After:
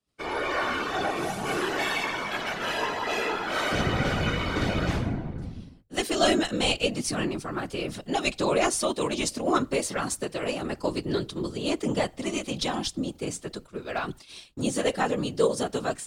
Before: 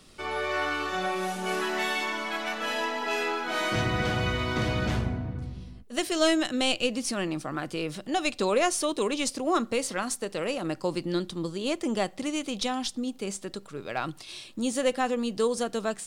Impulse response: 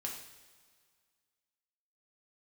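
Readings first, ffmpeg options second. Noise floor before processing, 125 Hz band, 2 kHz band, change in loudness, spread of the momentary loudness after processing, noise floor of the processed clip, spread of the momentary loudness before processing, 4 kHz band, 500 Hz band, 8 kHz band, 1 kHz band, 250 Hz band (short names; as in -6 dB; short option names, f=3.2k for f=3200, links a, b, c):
-50 dBFS, +1.0 dB, +1.0 dB, +1.0 dB, 9 LU, -52 dBFS, 8 LU, +1.0 dB, +1.0 dB, +1.0 dB, +1.0 dB, +0.5 dB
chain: -af "agate=range=-33dB:threshold=-37dB:ratio=3:detection=peak,afftfilt=real='hypot(re,im)*cos(2*PI*random(0))':imag='hypot(re,im)*sin(2*PI*random(1))':win_size=512:overlap=0.75,volume=7dB"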